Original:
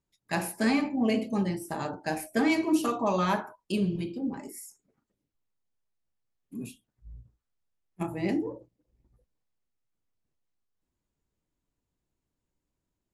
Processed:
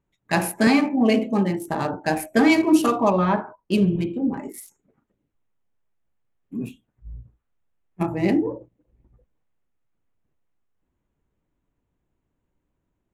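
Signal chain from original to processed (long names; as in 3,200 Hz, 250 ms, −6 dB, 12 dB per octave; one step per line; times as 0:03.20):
adaptive Wiener filter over 9 samples
0:00.67–0:01.68: high-pass filter 170 Hz 12 dB per octave
0:03.10–0:03.72: head-to-tape spacing loss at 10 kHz 33 dB
level +8.5 dB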